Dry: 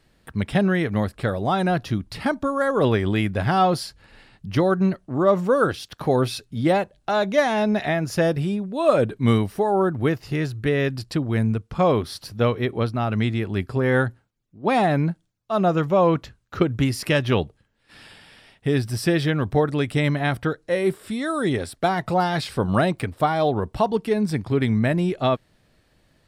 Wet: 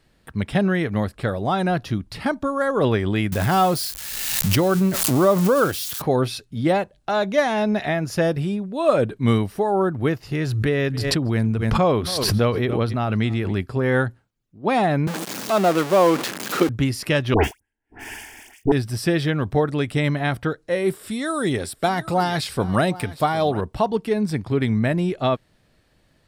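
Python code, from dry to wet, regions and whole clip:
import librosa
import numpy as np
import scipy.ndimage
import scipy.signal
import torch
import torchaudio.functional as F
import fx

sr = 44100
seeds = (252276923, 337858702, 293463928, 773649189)

y = fx.chain(x, sr, fx.crossing_spikes(level_db=-23.0),
    fx.pre_swell(db_per_s=31.0), at=(3.32, 6.02))
y = fx.chain(y, sr, fx.echo_single(ms=278, db=-23.5),
    fx.pre_swell(db_per_s=27.0), at=(10.41, 13.61))
y = fx.chain(y, sr, fx.zero_step(step_db=-19.5),
    fx.highpass(hz=210.0, slope=24), at=(15.07, 16.69))
y = fx.chain(y, sr, fx.leveller(passes=5),
    fx.fixed_phaser(hz=810.0, stages=8),
    fx.dispersion(late='highs', ms=98.0, hz=1600.0), at=(17.34, 18.72))
y = fx.chain(y, sr, fx.high_shelf(hz=5400.0, db=8.0),
    fx.echo_single(ms=758, db=-17.5), at=(20.88, 23.61))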